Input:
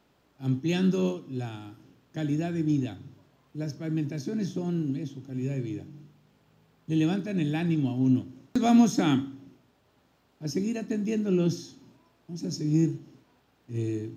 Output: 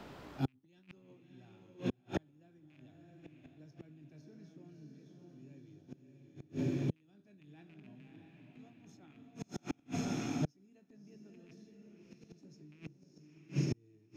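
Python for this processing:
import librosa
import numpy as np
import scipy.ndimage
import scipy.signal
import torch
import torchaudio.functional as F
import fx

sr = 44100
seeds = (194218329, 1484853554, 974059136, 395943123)

y = fx.rattle_buzz(x, sr, strikes_db=-23.0, level_db=-15.0)
y = fx.high_shelf(y, sr, hz=7300.0, db=-8.0)
y = fx.over_compress(y, sr, threshold_db=-29.0, ratio=-1.0)
y = fx.doubler(y, sr, ms=20.0, db=-12)
y = fx.echo_diffused(y, sr, ms=629, feedback_pct=44, wet_db=-3.0)
y = fx.gate_flip(y, sr, shuts_db=-25.0, range_db=-42)
y = fx.band_squash(y, sr, depth_pct=40)
y = y * 10.0 ** (6.5 / 20.0)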